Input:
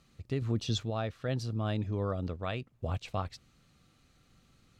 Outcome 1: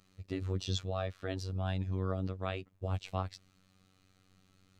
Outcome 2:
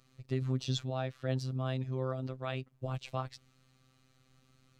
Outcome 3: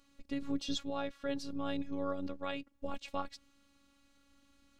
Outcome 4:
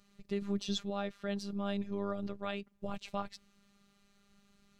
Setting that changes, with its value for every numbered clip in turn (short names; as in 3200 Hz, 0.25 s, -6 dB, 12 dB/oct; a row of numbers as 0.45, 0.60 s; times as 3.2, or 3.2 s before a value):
robotiser, frequency: 94, 130, 280, 200 Hz